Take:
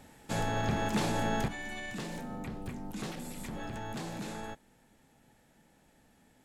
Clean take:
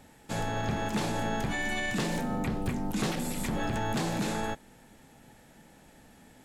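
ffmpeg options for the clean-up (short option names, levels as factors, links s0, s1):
-af "asetnsamples=n=441:p=0,asendcmd='1.48 volume volume 9dB',volume=1"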